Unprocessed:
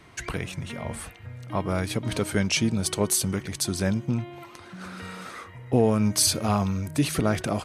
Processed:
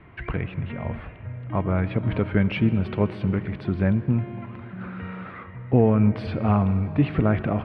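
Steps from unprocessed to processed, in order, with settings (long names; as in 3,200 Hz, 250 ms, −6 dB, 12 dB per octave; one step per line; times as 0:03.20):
inverse Chebyshev low-pass filter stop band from 6,300 Hz, stop band 50 dB
low-shelf EQ 210 Hz +7 dB
on a send: convolution reverb RT60 4.0 s, pre-delay 40 ms, DRR 14 dB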